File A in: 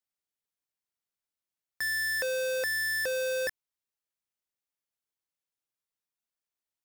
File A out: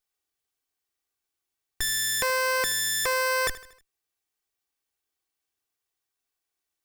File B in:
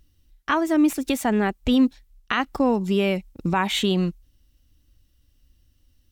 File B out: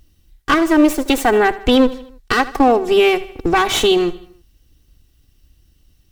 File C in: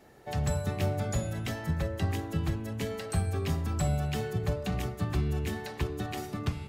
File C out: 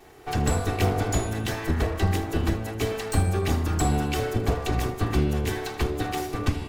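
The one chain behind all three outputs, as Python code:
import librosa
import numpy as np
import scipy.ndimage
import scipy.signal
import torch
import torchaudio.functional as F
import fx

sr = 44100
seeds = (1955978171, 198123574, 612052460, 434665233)

y = fx.lower_of_two(x, sr, delay_ms=2.6)
y = fx.echo_feedback(y, sr, ms=78, feedback_pct=50, wet_db=-17)
y = y * 10.0 ** (8.0 / 20.0)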